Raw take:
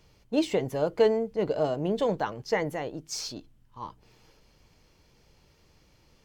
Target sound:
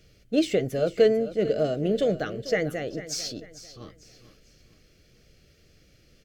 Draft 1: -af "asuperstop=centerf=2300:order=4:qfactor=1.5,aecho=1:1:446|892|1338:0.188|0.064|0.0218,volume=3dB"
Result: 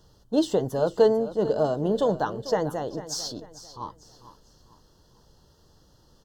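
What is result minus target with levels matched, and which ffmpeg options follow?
1000 Hz band +8.5 dB
-af "asuperstop=centerf=940:order=4:qfactor=1.5,aecho=1:1:446|892|1338:0.188|0.064|0.0218,volume=3dB"

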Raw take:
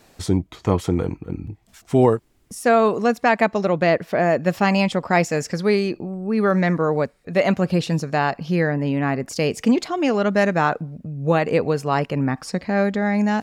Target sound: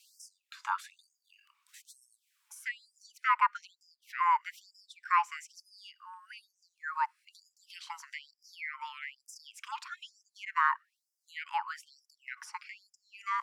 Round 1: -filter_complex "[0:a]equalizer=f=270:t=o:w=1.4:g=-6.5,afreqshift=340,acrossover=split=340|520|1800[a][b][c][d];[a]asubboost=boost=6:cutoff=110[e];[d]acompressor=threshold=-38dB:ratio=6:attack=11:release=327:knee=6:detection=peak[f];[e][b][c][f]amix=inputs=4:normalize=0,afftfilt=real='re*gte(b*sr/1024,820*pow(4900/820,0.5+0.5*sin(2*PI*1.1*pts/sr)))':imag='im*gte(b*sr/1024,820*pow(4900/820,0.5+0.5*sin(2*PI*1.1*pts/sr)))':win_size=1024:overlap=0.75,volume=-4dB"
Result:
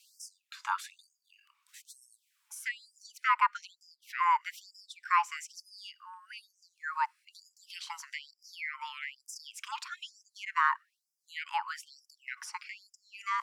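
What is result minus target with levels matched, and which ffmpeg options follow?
compressor: peak gain reduction -6 dB
-filter_complex "[0:a]equalizer=f=270:t=o:w=1.4:g=-6.5,afreqshift=340,acrossover=split=340|520|1800[a][b][c][d];[a]asubboost=boost=6:cutoff=110[e];[d]acompressor=threshold=-45dB:ratio=6:attack=11:release=327:knee=6:detection=peak[f];[e][b][c][f]amix=inputs=4:normalize=0,afftfilt=real='re*gte(b*sr/1024,820*pow(4900/820,0.5+0.5*sin(2*PI*1.1*pts/sr)))':imag='im*gte(b*sr/1024,820*pow(4900/820,0.5+0.5*sin(2*PI*1.1*pts/sr)))':win_size=1024:overlap=0.75,volume=-4dB"

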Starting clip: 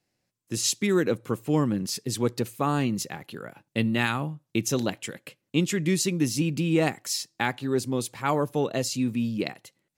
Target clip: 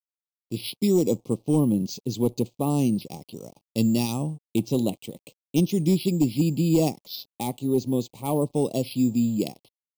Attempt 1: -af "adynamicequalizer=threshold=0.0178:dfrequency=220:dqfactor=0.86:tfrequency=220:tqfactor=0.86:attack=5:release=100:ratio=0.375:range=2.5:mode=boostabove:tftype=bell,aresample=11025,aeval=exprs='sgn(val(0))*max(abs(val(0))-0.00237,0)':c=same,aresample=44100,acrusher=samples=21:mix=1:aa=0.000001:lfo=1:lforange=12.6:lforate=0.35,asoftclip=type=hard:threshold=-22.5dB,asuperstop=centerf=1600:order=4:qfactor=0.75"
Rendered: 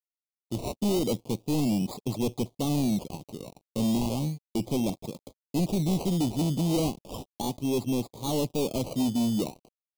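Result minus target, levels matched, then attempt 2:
hard clip: distortion +14 dB; decimation with a swept rate: distortion +10 dB
-af "adynamicequalizer=threshold=0.0178:dfrequency=220:dqfactor=0.86:tfrequency=220:tqfactor=0.86:attack=5:release=100:ratio=0.375:range=2.5:mode=boostabove:tftype=bell,aresample=11025,aeval=exprs='sgn(val(0))*max(abs(val(0))-0.00237,0)':c=same,aresample=44100,acrusher=samples=5:mix=1:aa=0.000001:lfo=1:lforange=3:lforate=0.35,asoftclip=type=hard:threshold=-13.5dB,asuperstop=centerf=1600:order=4:qfactor=0.75"

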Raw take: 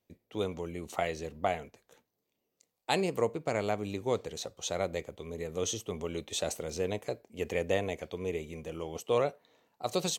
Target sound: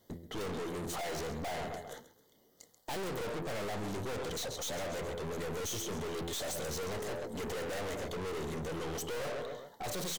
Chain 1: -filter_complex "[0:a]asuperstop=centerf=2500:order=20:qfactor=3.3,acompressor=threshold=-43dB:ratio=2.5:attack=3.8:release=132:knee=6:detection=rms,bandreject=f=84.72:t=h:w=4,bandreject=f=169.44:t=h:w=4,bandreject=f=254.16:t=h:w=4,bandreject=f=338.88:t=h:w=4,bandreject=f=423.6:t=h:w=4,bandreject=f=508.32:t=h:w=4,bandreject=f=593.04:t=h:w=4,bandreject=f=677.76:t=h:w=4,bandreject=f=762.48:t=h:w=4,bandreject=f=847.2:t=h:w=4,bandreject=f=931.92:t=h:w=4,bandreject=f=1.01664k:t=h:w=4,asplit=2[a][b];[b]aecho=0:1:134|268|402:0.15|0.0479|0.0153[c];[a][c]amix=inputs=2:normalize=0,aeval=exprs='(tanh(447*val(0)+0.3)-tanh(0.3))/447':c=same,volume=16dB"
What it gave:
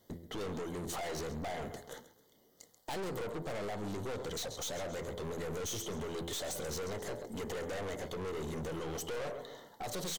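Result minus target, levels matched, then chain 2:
compressor: peak gain reduction +15 dB
-filter_complex "[0:a]asuperstop=centerf=2500:order=20:qfactor=3.3,bandreject=f=84.72:t=h:w=4,bandreject=f=169.44:t=h:w=4,bandreject=f=254.16:t=h:w=4,bandreject=f=338.88:t=h:w=4,bandreject=f=423.6:t=h:w=4,bandreject=f=508.32:t=h:w=4,bandreject=f=593.04:t=h:w=4,bandreject=f=677.76:t=h:w=4,bandreject=f=762.48:t=h:w=4,bandreject=f=847.2:t=h:w=4,bandreject=f=931.92:t=h:w=4,bandreject=f=1.01664k:t=h:w=4,asplit=2[a][b];[b]aecho=0:1:134|268|402:0.15|0.0479|0.0153[c];[a][c]amix=inputs=2:normalize=0,aeval=exprs='(tanh(447*val(0)+0.3)-tanh(0.3))/447':c=same,volume=16dB"

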